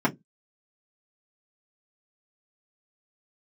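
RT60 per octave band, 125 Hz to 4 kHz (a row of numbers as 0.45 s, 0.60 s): 0.25 s, 0.20 s, 0.20 s, 0.10 s, 0.10 s, 0.10 s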